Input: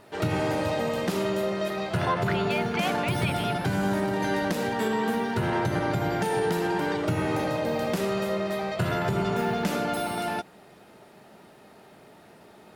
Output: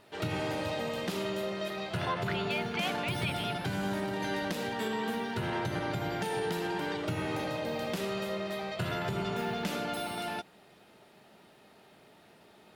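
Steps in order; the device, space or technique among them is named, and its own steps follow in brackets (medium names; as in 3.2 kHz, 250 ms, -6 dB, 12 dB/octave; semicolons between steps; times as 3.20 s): presence and air boost (peaking EQ 3.3 kHz +6 dB 1.3 oct; treble shelf 12 kHz +3 dB); trim -7.5 dB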